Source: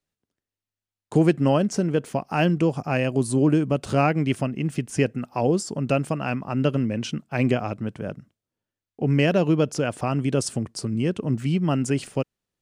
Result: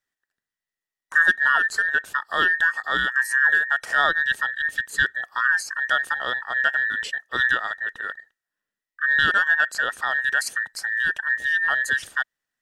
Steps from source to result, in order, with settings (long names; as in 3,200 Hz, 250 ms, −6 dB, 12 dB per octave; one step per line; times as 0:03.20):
frequency inversion band by band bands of 2,000 Hz